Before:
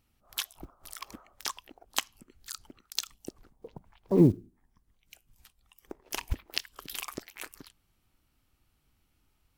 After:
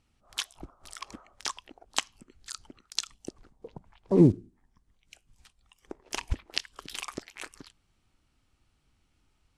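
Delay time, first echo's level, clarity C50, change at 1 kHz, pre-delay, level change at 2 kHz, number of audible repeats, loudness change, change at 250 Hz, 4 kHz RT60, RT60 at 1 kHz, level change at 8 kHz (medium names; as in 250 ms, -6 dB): no echo, no echo, no reverb, +1.5 dB, no reverb, +1.5 dB, no echo, +1.5 dB, +1.5 dB, no reverb, no reverb, +0.5 dB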